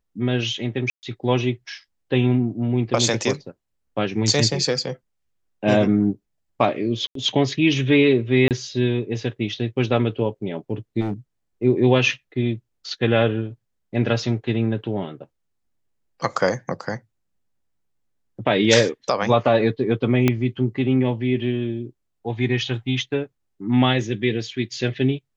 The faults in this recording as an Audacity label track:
0.900000	1.030000	gap 0.129 s
7.070000	7.150000	gap 83 ms
8.480000	8.510000	gap 28 ms
11.000000	11.130000	clipped -20.5 dBFS
20.280000	20.280000	pop -5 dBFS

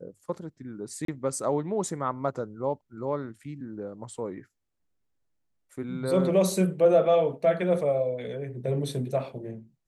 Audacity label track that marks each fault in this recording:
1.050000	1.080000	gap 33 ms

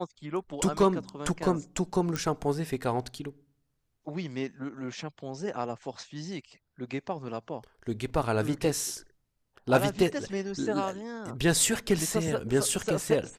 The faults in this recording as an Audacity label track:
2.160000	2.160000	pop

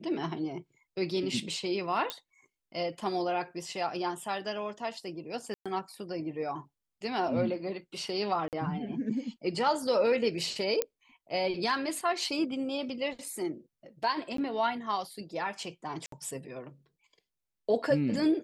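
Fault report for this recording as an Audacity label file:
2.100000	2.100000	pop -16 dBFS
5.540000	5.660000	gap 0.116 s
8.480000	8.530000	gap 48 ms
10.820000	10.820000	pop -12 dBFS
14.370000	14.380000	gap 13 ms
16.060000	16.120000	gap 63 ms

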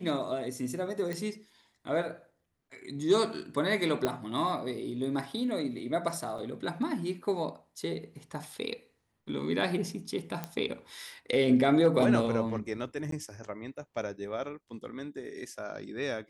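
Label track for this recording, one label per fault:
1.130000	1.130000	pop -22 dBFS
4.050000	4.050000	pop -14 dBFS
6.380000	6.380000	gap 4.2 ms
10.440000	10.440000	pop -19 dBFS
13.110000	13.120000	gap 13 ms

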